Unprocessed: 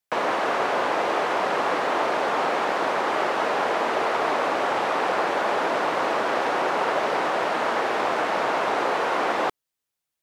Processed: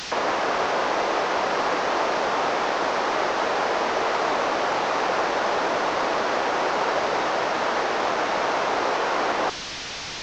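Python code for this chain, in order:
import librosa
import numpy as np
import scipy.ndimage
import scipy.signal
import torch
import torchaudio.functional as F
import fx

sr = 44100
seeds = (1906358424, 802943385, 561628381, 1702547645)

y = fx.delta_mod(x, sr, bps=32000, step_db=-26.0)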